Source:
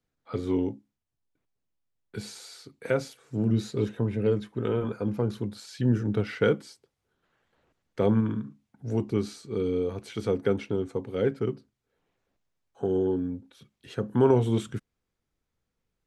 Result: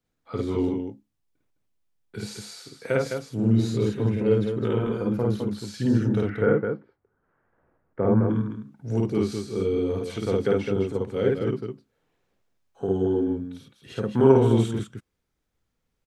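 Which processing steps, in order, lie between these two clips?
6.24–8.29 LPF 1700 Hz 24 dB/oct; on a send: loudspeakers at several distances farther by 18 m 0 dB, 72 m -5 dB

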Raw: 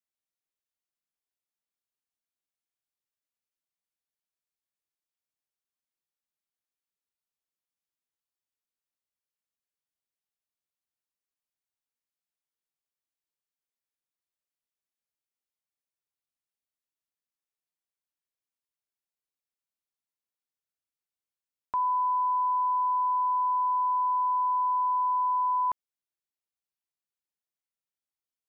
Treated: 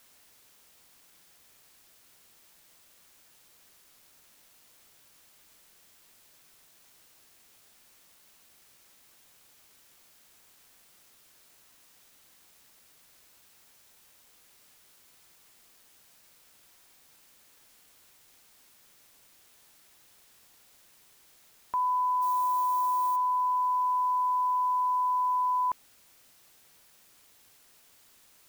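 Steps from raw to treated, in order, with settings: 22.21–23.15 added noise violet -44 dBFS; in parallel at -8.5 dB: requantised 8-bit, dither triangular; on the sum: gain -3.5 dB

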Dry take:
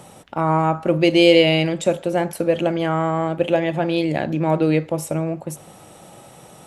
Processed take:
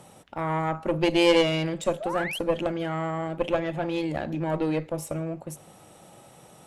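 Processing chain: painted sound rise, 2–2.39, 570–3400 Hz -26 dBFS; added harmonics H 4 -14 dB, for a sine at -1 dBFS; gain -7 dB

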